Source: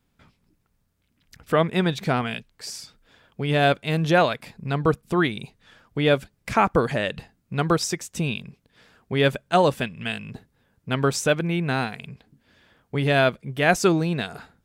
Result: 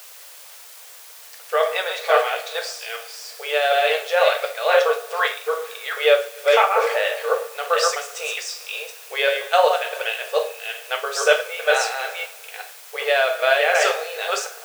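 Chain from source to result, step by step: chunks repeated in reverse 371 ms, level -2 dB; low-pass 8.2 kHz; band-stop 1 kHz, Q 8; two-slope reverb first 0.41 s, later 2.1 s, DRR 1.5 dB; tremolo 2.3 Hz, depth 44%; in parallel at -6.5 dB: word length cut 6-bit, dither triangular; on the sum: brick-wall FIR high-pass 420 Hz

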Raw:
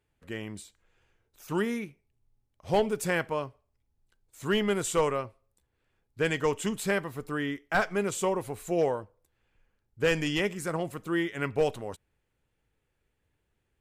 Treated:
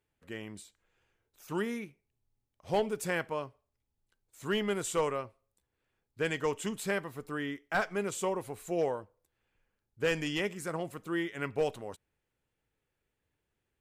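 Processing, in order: bass shelf 97 Hz -6.5 dB; trim -4 dB

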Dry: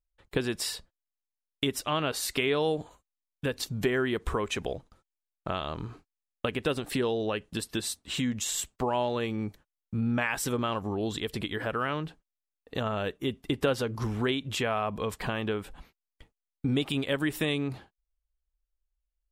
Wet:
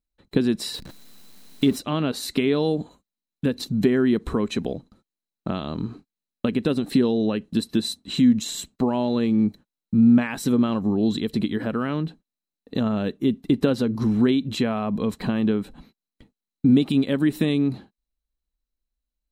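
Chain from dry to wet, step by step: 0.74–1.78 s: jump at every zero crossing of -37 dBFS; small resonant body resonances 220/4000 Hz, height 17 dB, ringing for 25 ms; trim -2 dB

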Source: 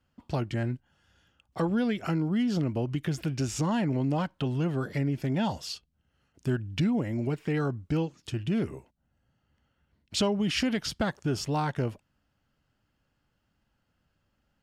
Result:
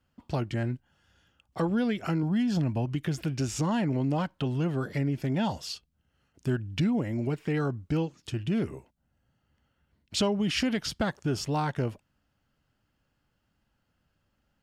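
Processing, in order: 2.23–2.86 s: comb 1.2 ms, depth 48%

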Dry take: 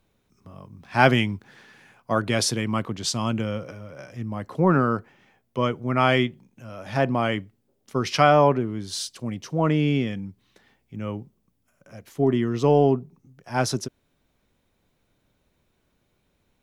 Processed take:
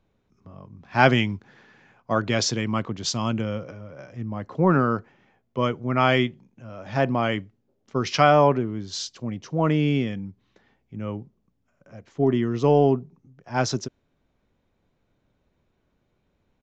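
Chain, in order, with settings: resampled via 16 kHz; tape noise reduction on one side only decoder only

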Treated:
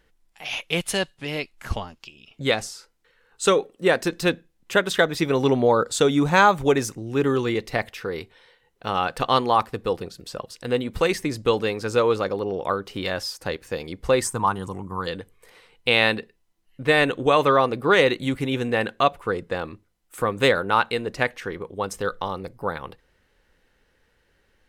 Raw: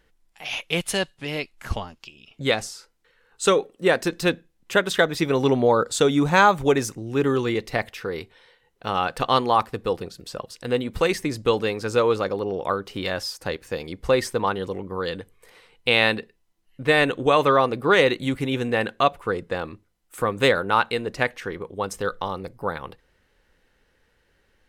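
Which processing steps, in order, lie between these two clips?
14.22–15.07 s: graphic EQ 125/500/1000/2000/4000/8000 Hz +5/-10/+8/-6/-9/+12 dB

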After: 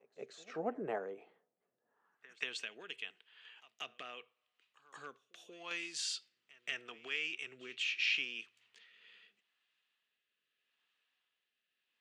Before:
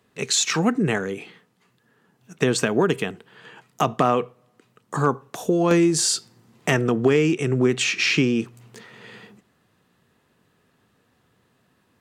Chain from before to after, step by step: bass shelf 210 Hz -7.5 dB; on a send: reverse echo 183 ms -22 dB; on the sum: band-pass sweep 650 Hz -> 2.9 kHz, 1.83–2.48 s; rotary cabinet horn 0.8 Hz; trim -5 dB

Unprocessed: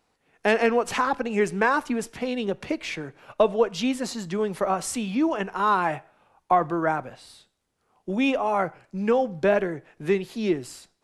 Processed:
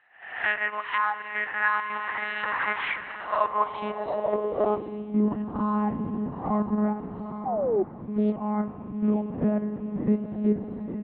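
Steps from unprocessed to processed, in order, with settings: reverse spectral sustain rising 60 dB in 0.54 s; comb 1 ms, depth 44%; echo that smears into a reverb 917 ms, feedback 46%, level -7 dB; monotone LPC vocoder at 8 kHz 210 Hz; in parallel at 0 dB: level held to a coarse grid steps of 23 dB; on the sum: spring tank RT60 4 s, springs 50 ms, chirp 35 ms, DRR 14.5 dB; 7.45–7.83 s: painted sound fall 360–820 Hz -14 dBFS; band-pass sweep 1.7 kHz -> 220 Hz, 3.07–5.32 s; gain riding within 5 dB 0.5 s; 7.07–8.36 s: loudspeaker Doppler distortion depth 0.49 ms; trim +1.5 dB

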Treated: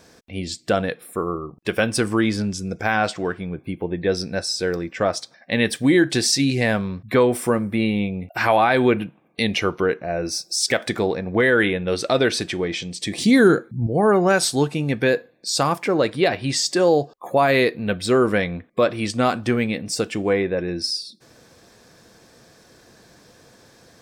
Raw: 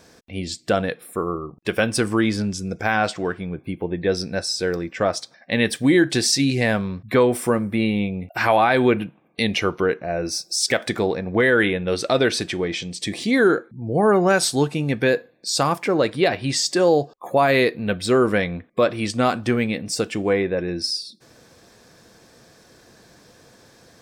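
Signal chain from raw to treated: 13.18–13.87 s: tone controls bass +11 dB, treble +8 dB

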